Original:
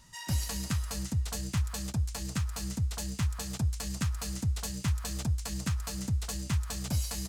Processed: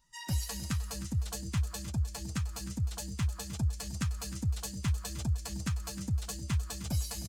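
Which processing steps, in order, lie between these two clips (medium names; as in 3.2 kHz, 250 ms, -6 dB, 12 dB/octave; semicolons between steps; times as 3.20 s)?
expander on every frequency bin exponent 1.5; on a send: feedback delay 308 ms, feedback 24%, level -13 dB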